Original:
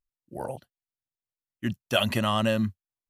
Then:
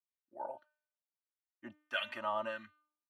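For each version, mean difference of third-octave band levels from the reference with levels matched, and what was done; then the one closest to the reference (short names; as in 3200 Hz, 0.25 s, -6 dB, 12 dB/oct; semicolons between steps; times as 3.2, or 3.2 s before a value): 9.0 dB: comb 3.3 ms, depth 80%; de-hum 301.8 Hz, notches 17; LFO band-pass sine 1.6 Hz 800–1900 Hz; gain -5.5 dB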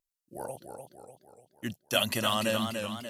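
5.5 dB: tone controls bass -5 dB, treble +10 dB; vibrato 2 Hz 14 cents; warbling echo 0.295 s, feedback 50%, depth 102 cents, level -6 dB; gain -4 dB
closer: second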